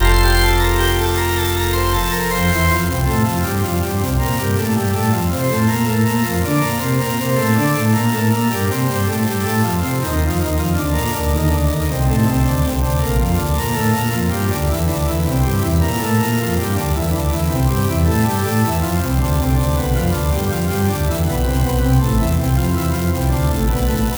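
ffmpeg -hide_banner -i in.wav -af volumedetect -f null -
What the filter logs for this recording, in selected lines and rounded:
mean_volume: -16.3 dB
max_volume: -2.2 dB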